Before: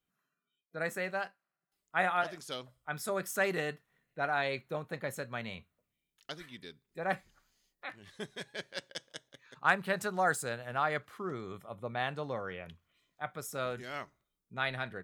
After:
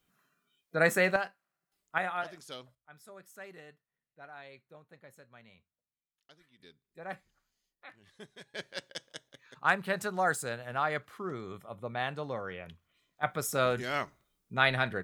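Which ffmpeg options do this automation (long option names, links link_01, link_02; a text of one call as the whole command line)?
ffmpeg -i in.wav -af "asetnsamples=nb_out_samples=441:pad=0,asendcmd='1.16 volume volume 2.5dB;1.98 volume volume -4dB;2.75 volume volume -17dB;6.6 volume volume -8dB;8.54 volume volume 0.5dB;13.23 volume volume 8dB',volume=10dB" out.wav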